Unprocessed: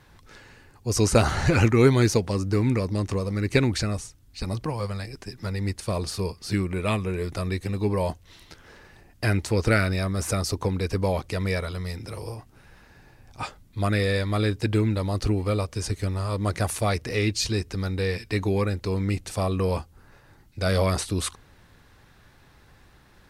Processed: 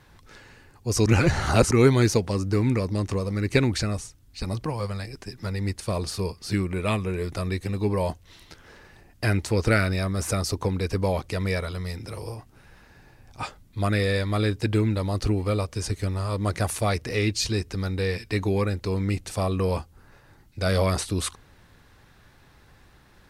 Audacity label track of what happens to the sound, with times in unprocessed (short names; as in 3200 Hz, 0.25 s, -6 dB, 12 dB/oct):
1.060000	1.710000	reverse